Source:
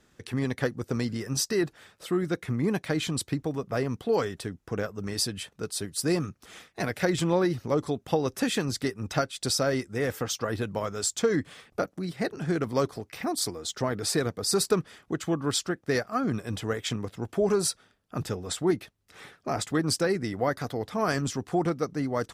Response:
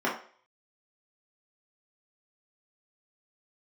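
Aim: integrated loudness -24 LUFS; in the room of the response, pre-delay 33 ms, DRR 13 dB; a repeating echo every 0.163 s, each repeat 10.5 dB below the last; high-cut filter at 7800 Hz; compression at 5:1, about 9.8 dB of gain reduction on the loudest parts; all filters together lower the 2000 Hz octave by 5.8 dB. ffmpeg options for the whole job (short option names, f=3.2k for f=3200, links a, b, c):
-filter_complex "[0:a]lowpass=7.8k,equalizer=f=2k:t=o:g=-7.5,acompressor=threshold=-30dB:ratio=5,aecho=1:1:163|326|489:0.299|0.0896|0.0269,asplit=2[a][b];[1:a]atrim=start_sample=2205,adelay=33[c];[b][c]afir=irnorm=-1:irlink=0,volume=-25.5dB[d];[a][d]amix=inputs=2:normalize=0,volume=10.5dB"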